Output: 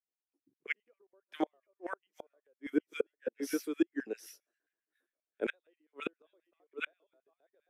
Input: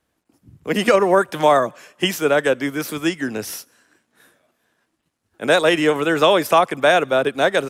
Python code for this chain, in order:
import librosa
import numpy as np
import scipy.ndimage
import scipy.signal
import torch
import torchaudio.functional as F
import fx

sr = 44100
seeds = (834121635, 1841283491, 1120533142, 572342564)

p1 = x + fx.echo_single(x, sr, ms=754, db=-4.5, dry=0)
p2 = fx.filter_lfo_highpass(p1, sr, shape='square', hz=7.5, low_hz=350.0, high_hz=2100.0, q=1.9)
p3 = fx.gate_flip(p2, sr, shuts_db=-10.0, range_db=-38)
p4 = fx.spectral_expand(p3, sr, expansion=1.5)
y = p4 * librosa.db_to_amplitude(-8.5)